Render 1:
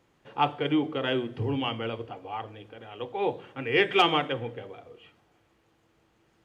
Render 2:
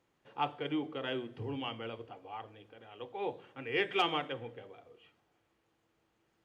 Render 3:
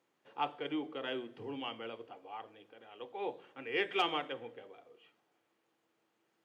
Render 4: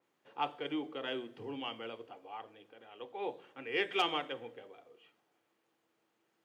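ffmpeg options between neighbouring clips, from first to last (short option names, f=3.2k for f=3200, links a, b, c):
-af "lowshelf=f=190:g=-4,volume=-8.5dB"
-af "highpass=220,volume=-1.5dB"
-af "adynamicequalizer=threshold=0.00355:dfrequency=3900:dqfactor=0.7:tfrequency=3900:tqfactor=0.7:attack=5:release=100:ratio=0.375:range=2.5:mode=boostabove:tftype=highshelf"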